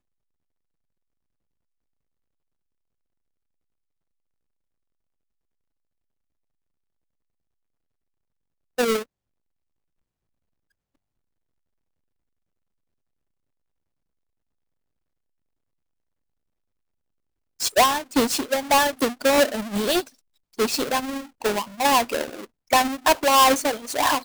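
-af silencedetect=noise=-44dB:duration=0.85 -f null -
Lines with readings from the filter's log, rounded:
silence_start: 0.00
silence_end: 8.78 | silence_duration: 8.78
silence_start: 9.03
silence_end: 17.60 | silence_duration: 8.57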